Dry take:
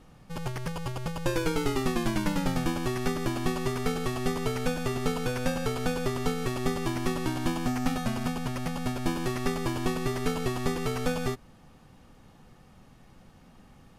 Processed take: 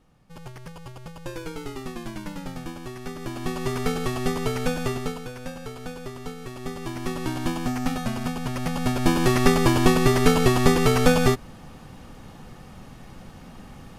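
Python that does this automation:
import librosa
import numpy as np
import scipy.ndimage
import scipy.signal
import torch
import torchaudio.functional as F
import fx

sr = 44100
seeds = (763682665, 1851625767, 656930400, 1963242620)

y = fx.gain(x, sr, db=fx.line((3.04, -7.0), (3.75, 3.5), (4.89, 3.5), (5.29, -7.0), (6.48, -7.0), (7.32, 2.0), (8.36, 2.0), (9.35, 11.0)))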